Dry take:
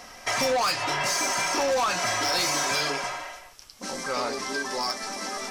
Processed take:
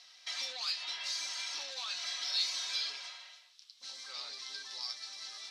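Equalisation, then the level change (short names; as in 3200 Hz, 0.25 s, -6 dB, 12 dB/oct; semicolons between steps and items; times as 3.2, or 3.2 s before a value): band-pass 3900 Hz, Q 4.4; 0.0 dB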